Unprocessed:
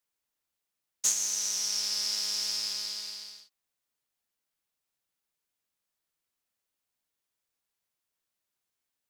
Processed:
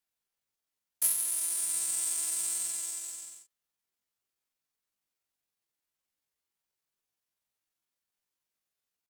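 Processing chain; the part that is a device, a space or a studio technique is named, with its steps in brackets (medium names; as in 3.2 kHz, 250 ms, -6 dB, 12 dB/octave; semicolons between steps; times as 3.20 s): chipmunk voice (pitch shift +8.5 st)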